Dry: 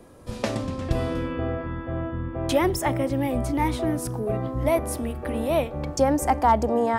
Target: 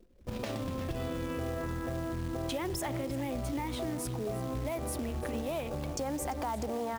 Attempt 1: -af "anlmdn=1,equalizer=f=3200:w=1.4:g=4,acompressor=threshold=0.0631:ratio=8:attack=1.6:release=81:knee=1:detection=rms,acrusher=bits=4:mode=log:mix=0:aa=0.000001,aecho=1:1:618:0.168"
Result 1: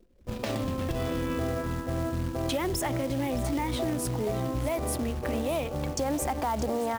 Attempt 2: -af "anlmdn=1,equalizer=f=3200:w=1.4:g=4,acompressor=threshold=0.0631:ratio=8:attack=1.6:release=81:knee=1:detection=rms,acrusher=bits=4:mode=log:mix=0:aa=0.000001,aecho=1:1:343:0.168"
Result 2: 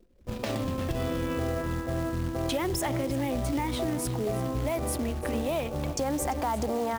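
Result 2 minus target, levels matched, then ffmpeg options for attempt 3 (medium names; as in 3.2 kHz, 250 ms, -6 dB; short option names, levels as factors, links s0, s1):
compression: peak gain reduction -5.5 dB
-af "anlmdn=1,equalizer=f=3200:w=1.4:g=4,acompressor=threshold=0.0299:ratio=8:attack=1.6:release=81:knee=1:detection=rms,acrusher=bits=4:mode=log:mix=0:aa=0.000001,aecho=1:1:343:0.168"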